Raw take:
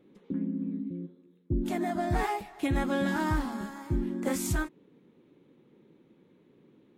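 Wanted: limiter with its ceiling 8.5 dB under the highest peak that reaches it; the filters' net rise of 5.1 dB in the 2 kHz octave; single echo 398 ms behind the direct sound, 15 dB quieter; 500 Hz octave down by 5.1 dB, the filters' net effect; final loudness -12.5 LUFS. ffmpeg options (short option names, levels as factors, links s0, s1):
-af "equalizer=f=500:t=o:g=-8,equalizer=f=2000:t=o:g=7,alimiter=level_in=1.19:limit=0.0631:level=0:latency=1,volume=0.841,aecho=1:1:398:0.178,volume=14.1"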